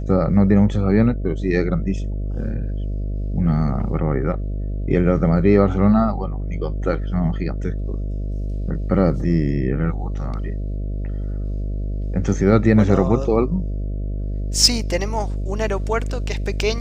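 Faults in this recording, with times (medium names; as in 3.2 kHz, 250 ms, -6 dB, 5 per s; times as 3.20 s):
buzz 50 Hz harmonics 13 -25 dBFS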